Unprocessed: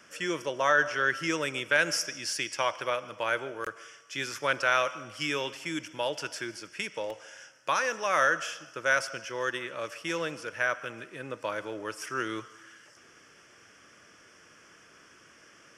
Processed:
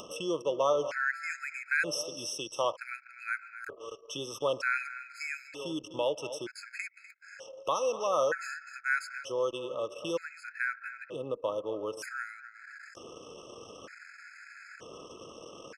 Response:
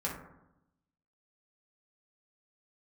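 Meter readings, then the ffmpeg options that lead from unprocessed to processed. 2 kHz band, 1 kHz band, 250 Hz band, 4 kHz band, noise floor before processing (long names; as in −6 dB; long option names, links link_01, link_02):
−5.0 dB, −5.0 dB, −3.5 dB, −5.5 dB, −57 dBFS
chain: -af "equalizer=frequency=490:width_type=o:width=0.63:gain=8.5,aecho=1:1:248|496:0.2|0.0319,acompressor=mode=upward:threshold=-27dB:ratio=2.5,anlmdn=0.398,afftfilt=real='re*gt(sin(2*PI*0.54*pts/sr)*(1-2*mod(floor(b*sr/1024/1300),2)),0)':imag='im*gt(sin(2*PI*0.54*pts/sr)*(1-2*mod(floor(b*sr/1024/1300),2)),0)':win_size=1024:overlap=0.75,volume=-3.5dB"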